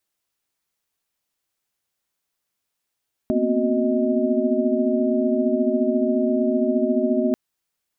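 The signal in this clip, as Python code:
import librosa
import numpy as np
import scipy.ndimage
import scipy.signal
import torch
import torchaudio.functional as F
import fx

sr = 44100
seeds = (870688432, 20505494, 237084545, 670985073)

y = fx.chord(sr, length_s=4.04, notes=(58, 59, 60, 66, 75), wave='sine', level_db=-24.0)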